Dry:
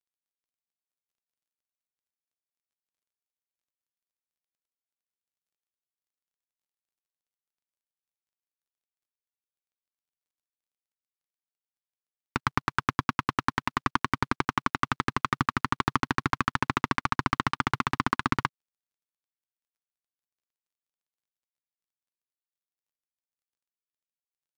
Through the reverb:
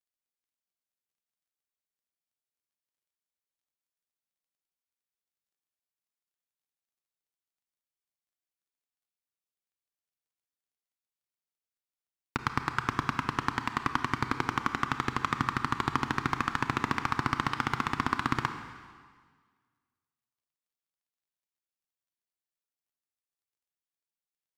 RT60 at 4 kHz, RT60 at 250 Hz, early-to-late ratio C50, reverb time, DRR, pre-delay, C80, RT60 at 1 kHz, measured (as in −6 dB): 1.6 s, 1.7 s, 8.5 dB, 1.7 s, 7.5 dB, 27 ms, 9.5 dB, 1.7 s